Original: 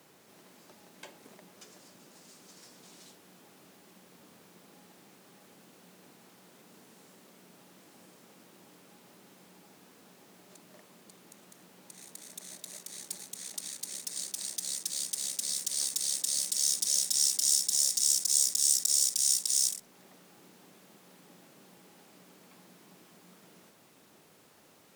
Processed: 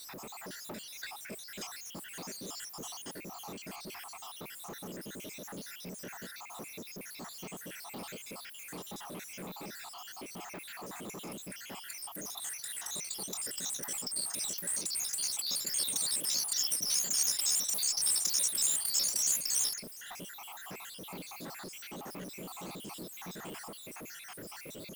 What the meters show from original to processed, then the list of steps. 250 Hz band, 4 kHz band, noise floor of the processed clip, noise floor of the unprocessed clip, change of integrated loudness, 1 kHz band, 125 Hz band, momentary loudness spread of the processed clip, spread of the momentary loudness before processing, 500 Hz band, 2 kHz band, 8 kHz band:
+9.5 dB, -1.0 dB, -48 dBFS, -60 dBFS, -7.0 dB, +11.0 dB, no reading, 17 LU, 19 LU, +9.0 dB, +8.5 dB, -3.0 dB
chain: random holes in the spectrogram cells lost 74%; power-law waveshaper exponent 0.5; attacks held to a fixed rise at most 300 dB/s; trim -5 dB

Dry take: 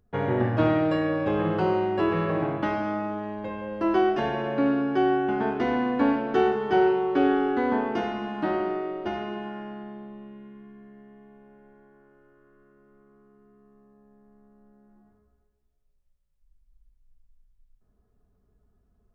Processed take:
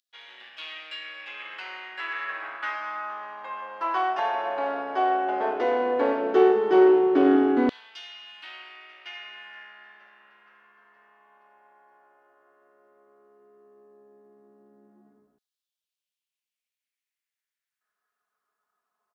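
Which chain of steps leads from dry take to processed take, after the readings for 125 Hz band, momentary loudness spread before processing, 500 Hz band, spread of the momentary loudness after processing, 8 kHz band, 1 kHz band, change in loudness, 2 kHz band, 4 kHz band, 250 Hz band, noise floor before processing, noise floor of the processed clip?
under -20 dB, 12 LU, +1.0 dB, 22 LU, no reading, +0.5 dB, +1.0 dB, 0.0 dB, +2.5 dB, -2.0 dB, -68 dBFS, under -85 dBFS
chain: single-diode clipper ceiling -19 dBFS; de-hum 56.54 Hz, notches 32; on a send: frequency-shifting echo 470 ms, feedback 62%, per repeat -61 Hz, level -19 dB; on the sum: LFO high-pass saw down 0.13 Hz 250–3800 Hz

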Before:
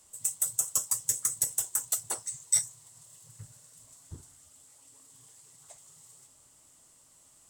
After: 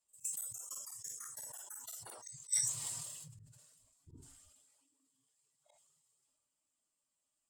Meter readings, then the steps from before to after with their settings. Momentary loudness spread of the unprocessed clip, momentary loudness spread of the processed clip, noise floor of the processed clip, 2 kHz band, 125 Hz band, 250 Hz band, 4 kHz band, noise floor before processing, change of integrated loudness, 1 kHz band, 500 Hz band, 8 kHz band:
7 LU, 23 LU, under -85 dBFS, -7.5 dB, -6.5 dB, -6.5 dB, -6.0 dB, -61 dBFS, -11.0 dB, -9.5 dB, -10.0 dB, -10.0 dB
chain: expander on every frequency bin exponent 1.5; pre-echo 47 ms -15.5 dB; time-frequency box 1.22–1.64 s, 540–1900 Hz +9 dB; bass shelf 280 Hz -9 dB; compression 2:1, threshold -40 dBFS, peak gain reduction 10.5 dB; spectral noise reduction 14 dB; slow attack 126 ms; decay stretcher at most 31 dB/s; trim +6.5 dB

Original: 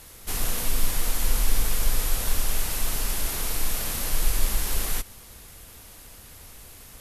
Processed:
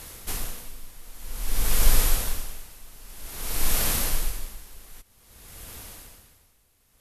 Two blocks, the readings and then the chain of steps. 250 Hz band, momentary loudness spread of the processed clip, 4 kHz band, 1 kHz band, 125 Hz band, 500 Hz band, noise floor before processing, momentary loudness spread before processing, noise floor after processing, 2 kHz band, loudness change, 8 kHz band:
-2.0 dB, 22 LU, -1.5 dB, -2.0 dB, -2.0 dB, -1.5 dB, -47 dBFS, 18 LU, -64 dBFS, -2.0 dB, 0.0 dB, -2.0 dB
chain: logarithmic tremolo 0.52 Hz, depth 25 dB; trim +5 dB

